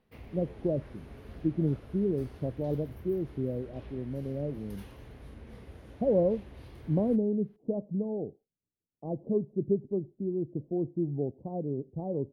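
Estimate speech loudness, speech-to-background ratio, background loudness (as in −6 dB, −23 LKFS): −32.5 LKFS, 17.5 dB, −50.0 LKFS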